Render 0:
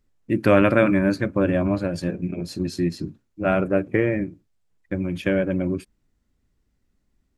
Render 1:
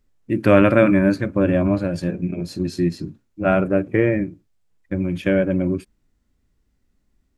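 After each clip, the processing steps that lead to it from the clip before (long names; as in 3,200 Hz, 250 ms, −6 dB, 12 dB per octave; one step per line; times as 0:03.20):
harmonic and percussive parts rebalanced harmonic +5 dB
level −1 dB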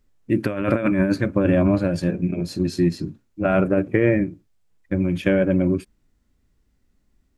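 compressor whose output falls as the input rises −17 dBFS, ratio −0.5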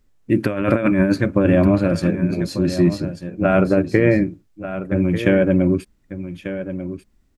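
single-tap delay 1,192 ms −11.5 dB
level +3 dB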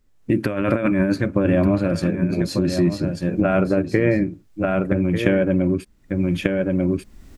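camcorder AGC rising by 29 dB per second
level −3 dB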